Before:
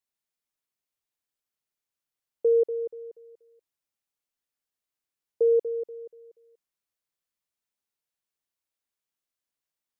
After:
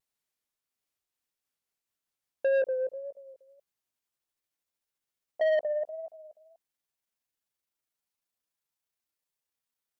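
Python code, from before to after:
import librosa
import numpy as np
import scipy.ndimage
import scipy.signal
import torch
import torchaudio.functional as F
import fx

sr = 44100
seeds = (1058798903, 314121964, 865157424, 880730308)

y = fx.pitch_glide(x, sr, semitones=9.0, runs='starting unshifted')
y = fx.vibrato(y, sr, rate_hz=1.7, depth_cents=59.0)
y = 10.0 ** (-24.5 / 20.0) * np.tanh(y / 10.0 ** (-24.5 / 20.0))
y = y * librosa.db_to_amplitude(2.5)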